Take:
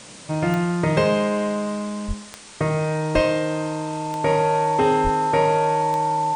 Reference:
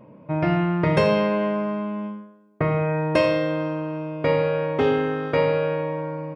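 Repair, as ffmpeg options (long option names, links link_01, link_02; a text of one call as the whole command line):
ffmpeg -i in.wav -filter_complex "[0:a]adeclick=threshold=4,bandreject=frequency=890:width=30,asplit=3[link_01][link_02][link_03];[link_01]afade=type=out:start_time=2.07:duration=0.02[link_04];[link_02]highpass=frequency=140:width=0.5412,highpass=frequency=140:width=1.3066,afade=type=in:start_time=2.07:duration=0.02,afade=type=out:start_time=2.19:duration=0.02[link_05];[link_03]afade=type=in:start_time=2.19:duration=0.02[link_06];[link_04][link_05][link_06]amix=inputs=3:normalize=0,asplit=3[link_07][link_08][link_09];[link_07]afade=type=out:start_time=3.14:duration=0.02[link_10];[link_08]highpass=frequency=140:width=0.5412,highpass=frequency=140:width=1.3066,afade=type=in:start_time=3.14:duration=0.02,afade=type=out:start_time=3.26:duration=0.02[link_11];[link_09]afade=type=in:start_time=3.26:duration=0.02[link_12];[link_10][link_11][link_12]amix=inputs=3:normalize=0,asplit=3[link_13][link_14][link_15];[link_13]afade=type=out:start_time=5.03:duration=0.02[link_16];[link_14]highpass=frequency=140:width=0.5412,highpass=frequency=140:width=1.3066,afade=type=in:start_time=5.03:duration=0.02,afade=type=out:start_time=5.15:duration=0.02[link_17];[link_15]afade=type=in:start_time=5.15:duration=0.02[link_18];[link_16][link_17][link_18]amix=inputs=3:normalize=0,afwtdn=0.01" out.wav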